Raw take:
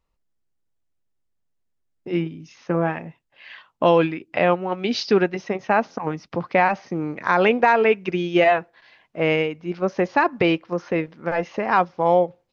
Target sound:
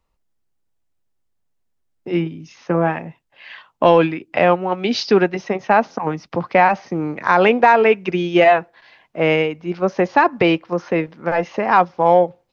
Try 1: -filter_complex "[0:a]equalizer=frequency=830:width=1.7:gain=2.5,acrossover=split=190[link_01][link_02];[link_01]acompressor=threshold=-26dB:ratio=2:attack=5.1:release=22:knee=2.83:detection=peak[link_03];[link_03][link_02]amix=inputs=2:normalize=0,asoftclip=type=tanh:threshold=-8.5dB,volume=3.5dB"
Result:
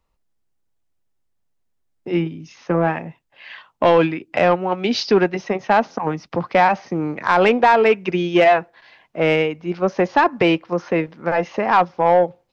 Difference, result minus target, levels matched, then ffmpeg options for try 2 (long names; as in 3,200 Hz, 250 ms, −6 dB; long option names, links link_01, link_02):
soft clipping: distortion +13 dB
-filter_complex "[0:a]equalizer=frequency=830:width=1.7:gain=2.5,acrossover=split=190[link_01][link_02];[link_01]acompressor=threshold=-26dB:ratio=2:attack=5.1:release=22:knee=2.83:detection=peak[link_03];[link_03][link_02]amix=inputs=2:normalize=0,asoftclip=type=tanh:threshold=-0.5dB,volume=3.5dB"